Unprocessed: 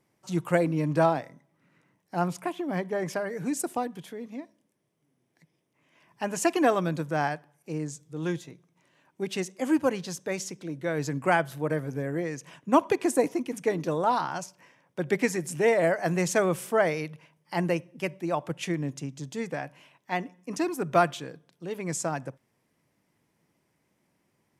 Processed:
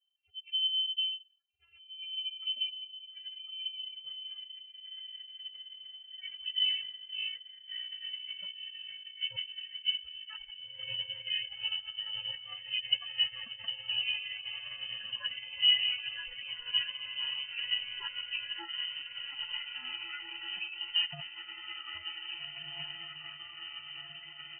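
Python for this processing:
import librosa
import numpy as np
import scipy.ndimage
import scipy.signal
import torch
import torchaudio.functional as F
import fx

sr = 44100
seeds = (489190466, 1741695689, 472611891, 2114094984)

p1 = fx.vocoder_glide(x, sr, note=64, semitones=10)
p2 = fx.freq_invert(p1, sr, carrier_hz=3400)
p3 = fx.notch(p2, sr, hz=370.0, q=12.0)
p4 = fx.spec_gate(p3, sr, threshold_db=-15, keep='strong')
p5 = fx.phaser_stages(p4, sr, stages=12, low_hz=200.0, high_hz=2300.0, hz=0.15, feedback_pct=20)
p6 = p5 + fx.echo_diffused(p5, sr, ms=1702, feedback_pct=75, wet_db=-8, dry=0)
p7 = fx.formant_shift(p6, sr, semitones=2)
y = p7 * librosa.db_to_amplitude(-5.5)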